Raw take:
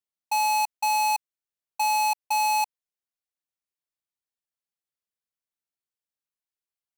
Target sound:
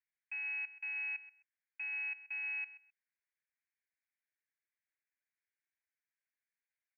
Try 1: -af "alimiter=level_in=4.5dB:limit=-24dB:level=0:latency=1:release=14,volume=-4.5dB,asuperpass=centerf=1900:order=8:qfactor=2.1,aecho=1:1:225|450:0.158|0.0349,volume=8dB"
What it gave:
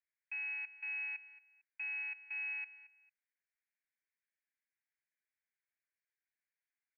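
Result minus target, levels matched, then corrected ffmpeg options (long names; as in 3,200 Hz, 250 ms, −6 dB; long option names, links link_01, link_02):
echo 95 ms late
-af "alimiter=level_in=4.5dB:limit=-24dB:level=0:latency=1:release=14,volume=-4.5dB,asuperpass=centerf=1900:order=8:qfactor=2.1,aecho=1:1:130|260:0.158|0.0349,volume=8dB"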